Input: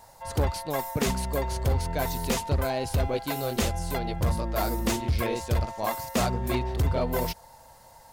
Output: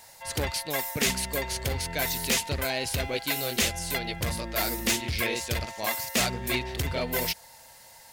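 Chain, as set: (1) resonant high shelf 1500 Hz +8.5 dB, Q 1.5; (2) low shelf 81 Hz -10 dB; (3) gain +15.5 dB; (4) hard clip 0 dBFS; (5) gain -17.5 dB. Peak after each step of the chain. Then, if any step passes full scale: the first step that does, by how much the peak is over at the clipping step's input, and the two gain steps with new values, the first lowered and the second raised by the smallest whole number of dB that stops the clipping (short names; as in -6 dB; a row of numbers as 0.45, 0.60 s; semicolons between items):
-8.0, -8.0, +7.5, 0.0, -17.5 dBFS; step 3, 7.5 dB; step 3 +7.5 dB, step 5 -9.5 dB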